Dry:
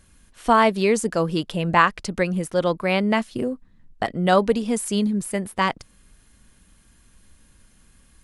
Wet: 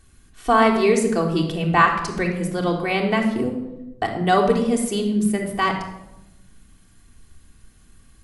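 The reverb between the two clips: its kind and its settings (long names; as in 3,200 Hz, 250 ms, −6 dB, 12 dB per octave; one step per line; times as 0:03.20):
rectangular room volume 3,500 cubic metres, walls furnished, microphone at 3.5 metres
level −2 dB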